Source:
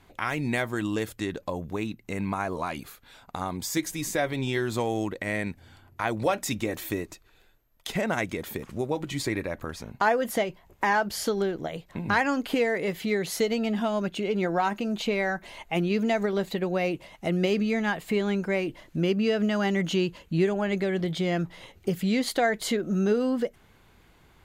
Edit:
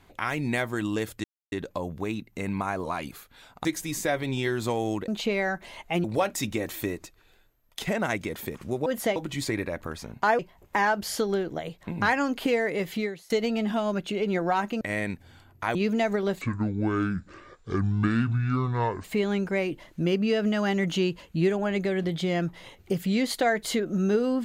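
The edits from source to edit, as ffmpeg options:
-filter_complex "[0:a]asplit=13[s0][s1][s2][s3][s4][s5][s6][s7][s8][s9][s10][s11][s12];[s0]atrim=end=1.24,asetpts=PTS-STARTPTS,afade=t=out:st=1.236:d=0.004:c=hsin,apad=pad_dur=0.28[s13];[s1]atrim=start=1.24:end=3.372,asetpts=PTS-STARTPTS,afade=t=in:d=0.004:c=hsin[s14];[s2]atrim=start=3.748:end=5.182[s15];[s3]atrim=start=14.888:end=15.852[s16];[s4]atrim=start=6.118:end=8.942[s17];[s5]atrim=start=10.168:end=10.472[s18];[s6]atrim=start=8.938:end=10.172[s19];[s7]atrim=start=10.468:end=13.38,asetpts=PTS-STARTPTS,afade=t=out:st=2.602:d=0.31:c=qua:silence=0.0668344[s20];[s8]atrim=start=13.38:end=14.892,asetpts=PTS-STARTPTS,afade=t=in:d=0.004:c=hsin:silence=0.0668344[s21];[s9]atrim=start=5.178:end=6.122[s22];[s10]atrim=start=15.848:end=16.514[s23];[s11]atrim=start=16.51:end=18.01,asetpts=PTS-STARTPTS,asetrate=25137,aresample=44100[s24];[s12]atrim=start=18.006[s25];[s13][s14]concat=n=2:v=0:a=1[s26];[s26][s15]acrossfade=d=0.004:c1=hsin:c2=hsin[s27];[s27][s16]acrossfade=d=0.004:c1=hsin:c2=hsin[s28];[s28][s17]acrossfade=d=0.004:c1=hsin:c2=hsin[s29];[s29][s18]acrossfade=d=0.004:c1=hsin:c2=hsin[s30];[s30][s19]acrossfade=d=0.004:c1=hsin:c2=hsin[s31];[s20][s21]concat=n=2:v=0:a=1[s32];[s31][s32]acrossfade=d=0.004:c1=hsin:c2=hsin[s33];[s33][s22]acrossfade=d=0.004:c1=hsin:c2=hsin[s34];[s34][s23]acrossfade=d=0.004:c1=hsin:c2=hsin[s35];[s35][s24]acrossfade=d=0.004:c1=hsin:c2=hsin[s36];[s36][s25]acrossfade=d=0.004:c1=hsin:c2=hsin"

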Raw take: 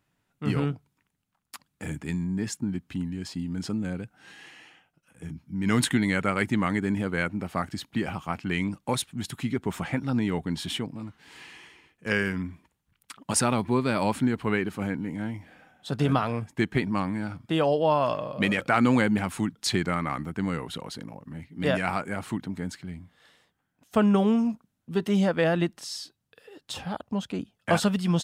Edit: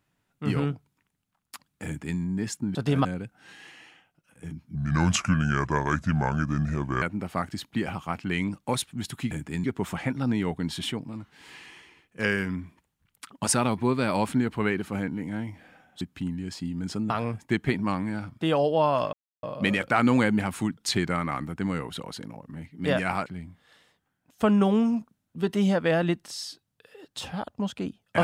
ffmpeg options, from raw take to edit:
-filter_complex "[0:a]asplit=11[s0][s1][s2][s3][s4][s5][s6][s7][s8][s9][s10];[s0]atrim=end=2.752[s11];[s1]atrim=start=15.878:end=16.182[s12];[s2]atrim=start=3.838:end=5.544[s13];[s3]atrim=start=5.54:end=7.22,asetpts=PTS-STARTPTS,asetrate=32634,aresample=44100[s14];[s4]atrim=start=7.216:end=9.512[s15];[s5]atrim=start=1.858:end=2.192[s16];[s6]atrim=start=9.508:end=15.882[s17];[s7]atrim=start=2.748:end=3.842[s18];[s8]atrim=start=16.178:end=18.21,asetpts=PTS-STARTPTS,afade=t=out:st=2.028:d=0.004:c=hsin,apad=pad_dur=0.3[s19];[s9]atrim=start=18.21:end=22.042,asetpts=PTS-STARTPTS,afade=t=in:d=0.004:c=hsin[s20];[s10]atrim=start=22.788[s21];[s11][s12]acrossfade=d=0.004:c1=hsin:c2=hsin[s22];[s22][s13]acrossfade=d=0.004:c1=hsin:c2=hsin[s23];[s23][s14]acrossfade=d=0.004:c1=hsin:c2=hsin[s24];[s24][s15]acrossfade=d=0.004:c1=hsin:c2=hsin[s25];[s25][s16]acrossfade=d=0.004:c1=hsin:c2=hsin[s26];[s26][s17]acrossfade=d=0.004:c1=hsin:c2=hsin[s27];[s27][s18]acrossfade=d=0.004:c1=hsin:c2=hsin[s28];[s19][s20]concat=n=2:v=0:a=1[s29];[s28][s29]acrossfade=d=0.004:c1=hsin:c2=hsin[s30];[s30][s21]acrossfade=d=0.004:c1=hsin:c2=hsin"

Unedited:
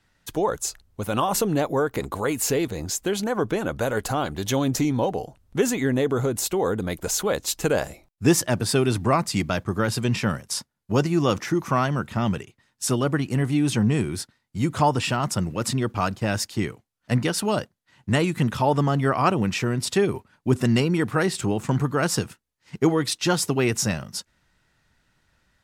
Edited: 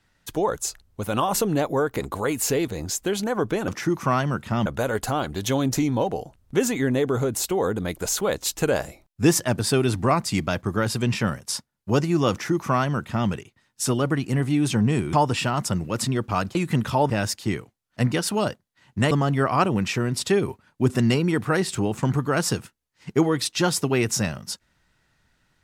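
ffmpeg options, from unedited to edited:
-filter_complex "[0:a]asplit=7[s0][s1][s2][s3][s4][s5][s6];[s0]atrim=end=3.682[s7];[s1]atrim=start=11.328:end=12.312[s8];[s2]atrim=start=3.678:end=14.152[s9];[s3]atrim=start=14.788:end=16.212[s10];[s4]atrim=start=18.218:end=18.772[s11];[s5]atrim=start=16.208:end=18.222[s12];[s6]atrim=start=18.768[s13];[s7][s8]acrossfade=d=0.004:c1=hsin:c2=hsin[s14];[s14][s9]acrossfade=d=0.004:c1=hsin:c2=hsin[s15];[s15][s10]acrossfade=d=0.004:c1=hsin:c2=hsin[s16];[s16][s11]acrossfade=d=0.004:c1=hsin:c2=hsin[s17];[s17][s12]acrossfade=d=0.004:c1=hsin:c2=hsin[s18];[s18][s13]acrossfade=d=0.004:c1=hsin:c2=hsin"

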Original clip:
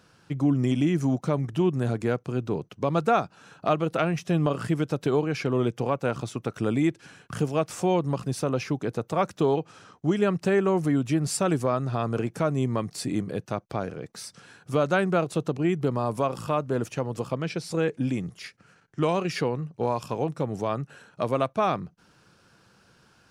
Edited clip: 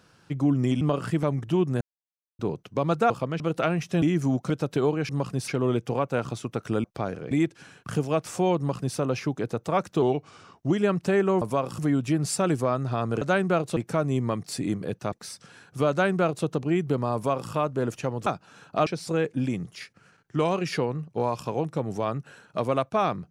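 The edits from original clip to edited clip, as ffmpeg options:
-filter_complex "[0:a]asplit=22[s0][s1][s2][s3][s4][s5][s6][s7][s8][s9][s10][s11][s12][s13][s14][s15][s16][s17][s18][s19][s20][s21];[s0]atrim=end=0.812[s22];[s1]atrim=start=4.378:end=4.802[s23];[s2]atrim=start=1.288:end=1.87,asetpts=PTS-STARTPTS,afade=t=out:st=0.578:d=0.004:c=hsin[s24];[s3]atrim=start=1.87:end=2.45,asetpts=PTS-STARTPTS,volume=0[s25];[s4]atrim=start=2.45:end=3.162,asetpts=PTS-STARTPTS,afade=t=in:d=0.004:c=hsin[s26];[s5]atrim=start=17.198:end=17.502[s27];[s6]atrim=start=3.758:end=4.382[s28];[s7]atrim=start=0.808:end=1.292[s29];[s8]atrim=start=4.798:end=5.392[s30];[s9]atrim=start=8.018:end=8.412[s31];[s10]atrim=start=5.388:end=6.752[s32];[s11]atrim=start=13.588:end=14.062[s33];[s12]atrim=start=6.748:end=9.464[s34];[s13]atrim=start=9.46:end=10.09,asetpts=PTS-STARTPTS,asetrate=40572,aresample=44100[s35];[s14]atrim=start=10.086:end=10.802[s36];[s15]atrim=start=16.078:end=16.452[s37];[s16]atrim=start=10.798:end=12.232[s38];[s17]atrim=start=14.838:end=15.392[s39];[s18]atrim=start=12.228:end=13.592[s40];[s19]atrim=start=14.058:end=17.202[s41];[s20]atrim=start=3.158:end=3.762[s42];[s21]atrim=start=17.498[s43];[s22][s23]acrossfade=d=0.004:c1=hsin:c2=hsin[s44];[s24][s25][s26]concat=n=3:v=0:a=1[s45];[s44][s45]acrossfade=d=0.004:c1=hsin:c2=hsin[s46];[s46][s27]acrossfade=d=0.004:c1=hsin:c2=hsin[s47];[s47][s28]acrossfade=d=0.004:c1=hsin:c2=hsin[s48];[s48][s29]acrossfade=d=0.004:c1=hsin:c2=hsin[s49];[s49][s30]acrossfade=d=0.004:c1=hsin:c2=hsin[s50];[s50][s31]acrossfade=d=0.004:c1=hsin:c2=hsin[s51];[s51][s32]acrossfade=d=0.004:c1=hsin:c2=hsin[s52];[s52][s33]acrossfade=d=0.004:c1=hsin:c2=hsin[s53];[s53][s34]acrossfade=d=0.004:c1=hsin:c2=hsin[s54];[s54][s35]acrossfade=d=0.004:c1=hsin:c2=hsin[s55];[s55][s36]acrossfade=d=0.004:c1=hsin:c2=hsin[s56];[s56][s37]acrossfade=d=0.004:c1=hsin:c2=hsin[s57];[s57][s38]acrossfade=d=0.004:c1=hsin:c2=hsin[s58];[s58][s39]acrossfade=d=0.004:c1=hsin:c2=hsin[s59];[s59][s40]acrossfade=d=0.004:c1=hsin:c2=hsin[s60];[s60][s41]acrossfade=d=0.004:c1=hsin:c2=hsin[s61];[s61][s42]acrossfade=d=0.004:c1=hsin:c2=hsin[s62];[s62][s43]acrossfade=d=0.004:c1=hsin:c2=hsin"

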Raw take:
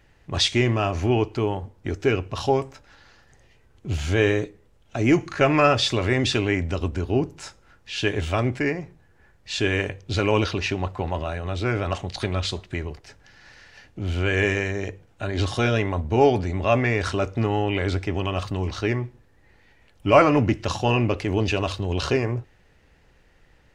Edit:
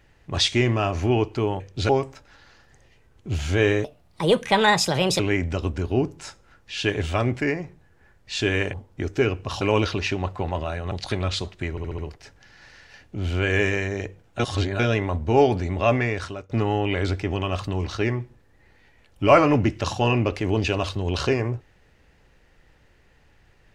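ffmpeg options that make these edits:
-filter_complex "[0:a]asplit=15[s0][s1][s2][s3][s4][s5][s6][s7][s8][s9][s10][s11][s12][s13][s14];[s0]atrim=end=1.602[s15];[s1]atrim=start=9.918:end=10.212[s16];[s2]atrim=start=2.478:end=4.434[s17];[s3]atrim=start=4.43:end=6.38,asetpts=PTS-STARTPTS,asetrate=63504,aresample=44100[s18];[s4]atrim=start=6.376:end=9.922[s19];[s5]atrim=start=1.598:end=2.482[s20];[s6]atrim=start=10.208:end=11.512[s21];[s7]atrim=start=12.028:end=12.892[s22];[s8]atrim=start=12.818:end=12.892[s23];[s9]atrim=start=12.818:end=12.892[s24];[s10]atrim=start=12.818:end=12.892[s25];[s11]atrim=start=12.818:end=15.232[s26];[s12]atrim=start=15.228:end=15.632,asetpts=PTS-STARTPTS,areverse[s27];[s13]atrim=start=15.628:end=17.33,asetpts=PTS-STARTPTS,afade=t=out:st=1.152:d=0.55:silence=0.0707946[s28];[s14]atrim=start=17.33,asetpts=PTS-STARTPTS,afade=t=in:d=0.004:c=hsin:silence=0.0707946[s29];[s15][s16]acrossfade=d=0.004:c1=hsin:c2=hsin[s30];[s30][s17]acrossfade=d=0.004:c1=hsin:c2=hsin[s31];[s31][s18]acrossfade=d=0.004:c1=hsin:c2=hsin[s32];[s32][s19]acrossfade=d=0.004:c1=hsin:c2=hsin[s33];[s33][s20]acrossfade=d=0.004:c1=hsin:c2=hsin[s34];[s34][s21]acrossfade=d=0.004:c1=hsin:c2=hsin[s35];[s35][s22]acrossfade=d=0.004:c1=hsin:c2=hsin[s36];[s36][s23]acrossfade=d=0.004:c1=hsin:c2=hsin[s37];[s37][s24]acrossfade=d=0.004:c1=hsin:c2=hsin[s38];[s38][s25]acrossfade=d=0.004:c1=hsin:c2=hsin[s39];[s39][s26]acrossfade=d=0.004:c1=hsin:c2=hsin[s40];[s40][s27]acrossfade=d=0.004:c1=hsin:c2=hsin[s41];[s28][s29]concat=n=2:v=0:a=1[s42];[s41][s42]acrossfade=d=0.004:c1=hsin:c2=hsin"

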